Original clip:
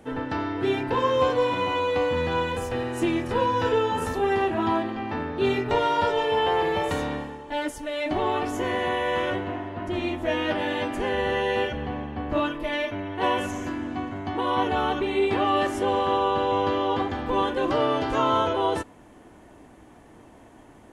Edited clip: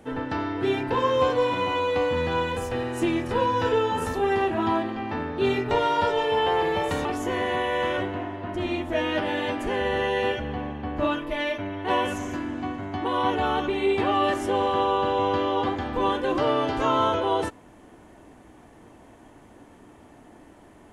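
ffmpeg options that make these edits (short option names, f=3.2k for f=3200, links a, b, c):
-filter_complex "[0:a]asplit=2[a][b];[a]atrim=end=7.052[c];[b]atrim=start=8.378[d];[c][d]acrossfade=d=0.004:c1=hsin:c2=hsin"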